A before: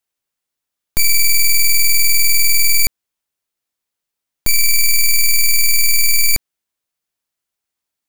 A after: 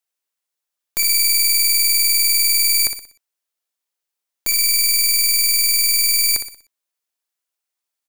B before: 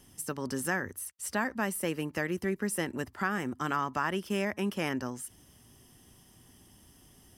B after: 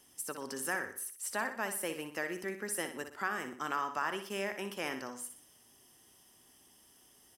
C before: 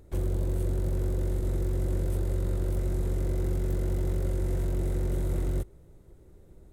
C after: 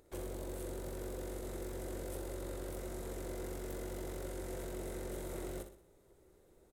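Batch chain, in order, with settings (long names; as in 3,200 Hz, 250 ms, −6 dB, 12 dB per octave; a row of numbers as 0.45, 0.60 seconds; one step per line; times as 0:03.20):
bass and treble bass −15 dB, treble +2 dB
repeating echo 61 ms, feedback 41%, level −9 dB
level −3.5 dB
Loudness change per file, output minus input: −1.0, −4.5, −13.0 LU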